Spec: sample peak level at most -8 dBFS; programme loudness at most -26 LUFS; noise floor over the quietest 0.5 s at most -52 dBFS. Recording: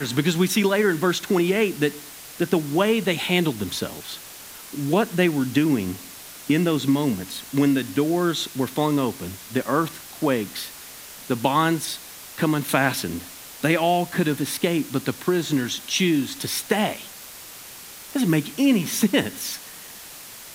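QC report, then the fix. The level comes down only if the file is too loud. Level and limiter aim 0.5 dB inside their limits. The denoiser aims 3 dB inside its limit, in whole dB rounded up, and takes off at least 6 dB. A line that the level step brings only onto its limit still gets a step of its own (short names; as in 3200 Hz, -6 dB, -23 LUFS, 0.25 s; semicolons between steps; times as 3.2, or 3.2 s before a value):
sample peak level -3.0 dBFS: fail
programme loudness -23.0 LUFS: fail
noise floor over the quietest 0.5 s -41 dBFS: fail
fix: denoiser 11 dB, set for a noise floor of -41 dBFS; gain -3.5 dB; limiter -8.5 dBFS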